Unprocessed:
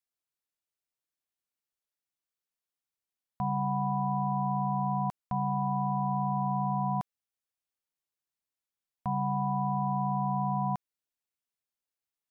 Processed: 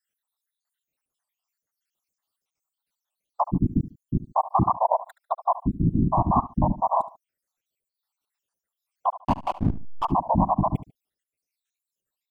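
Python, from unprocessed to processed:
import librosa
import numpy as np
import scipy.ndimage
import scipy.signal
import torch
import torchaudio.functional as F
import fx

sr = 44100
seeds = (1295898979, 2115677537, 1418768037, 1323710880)

p1 = fx.spec_dropout(x, sr, seeds[0], share_pct=77)
p2 = fx.whisperise(p1, sr, seeds[1])
p3 = fx.rider(p2, sr, range_db=10, speed_s=2.0)
p4 = p2 + (p3 * 10.0 ** (2.0 / 20.0))
p5 = fx.backlash(p4, sr, play_db=-28.0, at=(9.1, 10.06))
p6 = p5 + fx.echo_feedback(p5, sr, ms=73, feedback_pct=24, wet_db=-16, dry=0)
p7 = fx.record_warp(p6, sr, rpm=33.33, depth_cents=160.0)
y = p7 * 10.0 ** (5.5 / 20.0)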